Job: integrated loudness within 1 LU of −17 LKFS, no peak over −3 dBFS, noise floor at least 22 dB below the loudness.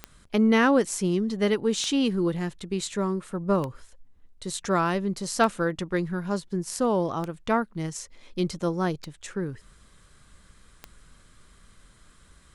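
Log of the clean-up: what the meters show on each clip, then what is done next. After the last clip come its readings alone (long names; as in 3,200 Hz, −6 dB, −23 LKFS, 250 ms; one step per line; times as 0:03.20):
number of clicks 7; integrated loudness −26.5 LKFS; sample peak −8.5 dBFS; target loudness −17.0 LKFS
→ click removal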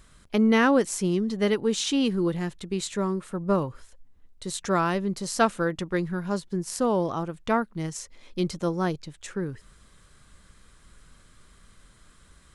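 number of clicks 0; integrated loudness −26.5 LKFS; sample peak −8.5 dBFS; target loudness −17.0 LKFS
→ level +9.5 dB
brickwall limiter −3 dBFS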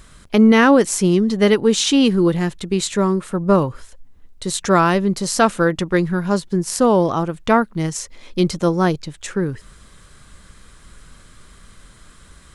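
integrated loudness −17.5 LKFS; sample peak −3.0 dBFS; background noise floor −47 dBFS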